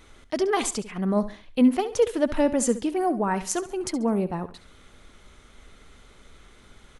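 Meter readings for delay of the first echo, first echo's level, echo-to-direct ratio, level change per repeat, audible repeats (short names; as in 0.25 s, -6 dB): 69 ms, -14.5 dB, -14.0 dB, -10.0 dB, 3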